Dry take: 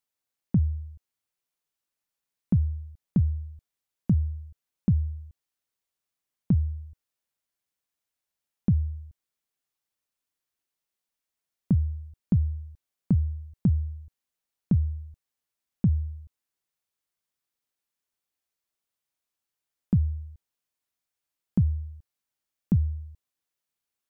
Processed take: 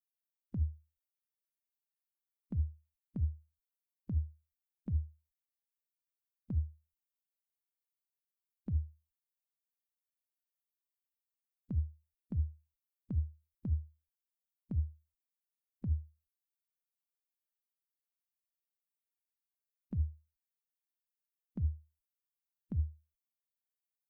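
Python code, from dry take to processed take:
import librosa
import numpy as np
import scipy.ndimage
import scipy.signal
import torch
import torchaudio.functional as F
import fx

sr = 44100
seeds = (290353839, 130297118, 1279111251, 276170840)

y = fx.bin_expand(x, sr, power=3.0)
y = fx.peak_eq(y, sr, hz=60.0, db=-11.0, octaves=1.3)
y = fx.over_compress(y, sr, threshold_db=-34.0, ratio=-1.0)
y = y * 10.0 ** (2.0 / 20.0)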